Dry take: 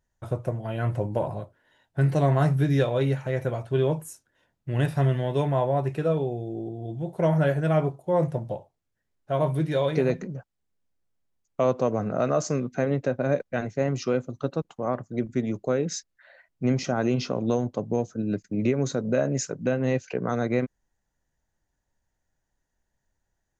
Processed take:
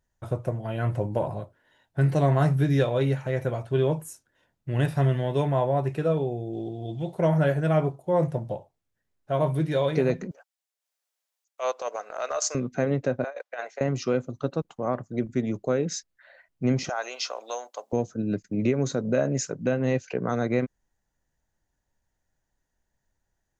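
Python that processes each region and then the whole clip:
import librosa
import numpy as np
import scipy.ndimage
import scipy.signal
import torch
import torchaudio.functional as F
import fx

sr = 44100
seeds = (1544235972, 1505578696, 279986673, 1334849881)

y = fx.chain(x, sr, fx.peak_eq(hz=3300.0, db=12.5, octaves=2.0),
    fx.notch(hz=1600.0, q=8.6), at=(6.53, 7.15))
y = fx.chain(y, sr, fx.highpass(hz=550.0, slope=24),
    fx.high_shelf(hz=2300.0, db=10.0),
    fx.transient(attack_db=-12, sustain_db=-6), at=(10.31, 12.55))
y = fx.chain(y, sr, fx.highpass(hz=600.0, slope=24),
    fx.high_shelf(hz=6100.0, db=-7.5),
    fx.over_compress(threshold_db=-33.0, ratio=-0.5), at=(13.24, 13.81))
y = fx.chain(y, sr, fx.highpass(hz=640.0, slope=24),
    fx.high_shelf(hz=5500.0, db=11.5), at=(16.89, 17.93))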